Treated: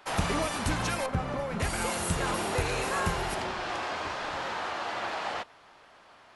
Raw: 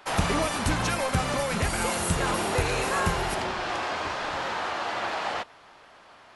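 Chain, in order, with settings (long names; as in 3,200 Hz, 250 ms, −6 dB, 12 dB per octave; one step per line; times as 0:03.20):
0:01.06–0:01.60: low-pass filter 1,100 Hz 6 dB per octave
level −3.5 dB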